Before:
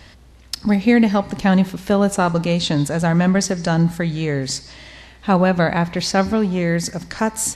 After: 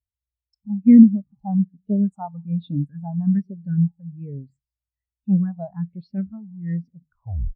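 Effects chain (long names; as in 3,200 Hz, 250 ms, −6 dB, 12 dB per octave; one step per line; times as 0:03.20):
turntable brake at the end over 0.53 s
all-pass phaser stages 4, 1.2 Hz, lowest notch 340–1,400 Hz
every bin expanded away from the loudest bin 2.5 to 1
level +4 dB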